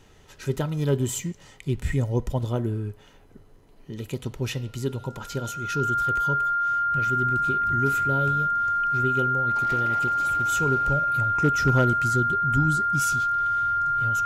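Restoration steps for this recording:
clipped peaks rebuilt −11.5 dBFS
notch filter 1,400 Hz, Q 30

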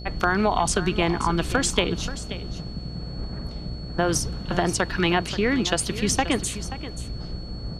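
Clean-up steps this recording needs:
clipped peaks rebuilt −7.5 dBFS
hum removal 60 Hz, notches 12
notch filter 4,400 Hz, Q 30
echo removal 531 ms −13.5 dB

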